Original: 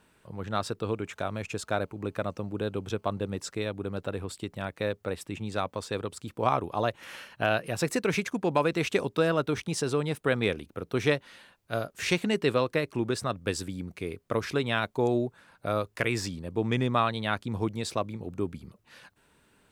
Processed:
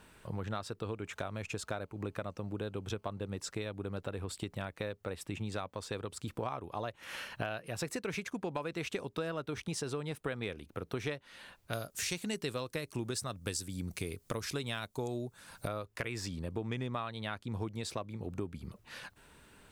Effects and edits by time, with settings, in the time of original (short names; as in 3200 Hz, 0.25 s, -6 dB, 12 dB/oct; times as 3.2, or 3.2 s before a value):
11.73–15.68 tone controls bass +3 dB, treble +13 dB
whole clip: low shelf 370 Hz -4.5 dB; compressor 4:1, threshold -43 dBFS; low shelf 99 Hz +10.5 dB; gain +5 dB